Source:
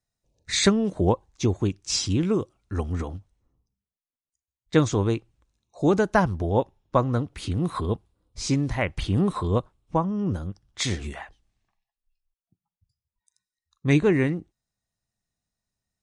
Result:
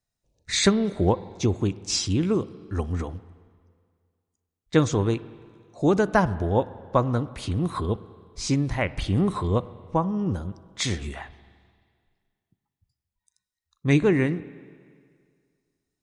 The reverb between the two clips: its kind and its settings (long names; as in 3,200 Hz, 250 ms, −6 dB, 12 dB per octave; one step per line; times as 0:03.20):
spring reverb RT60 2 s, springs 43/47/57 ms, chirp 20 ms, DRR 16.5 dB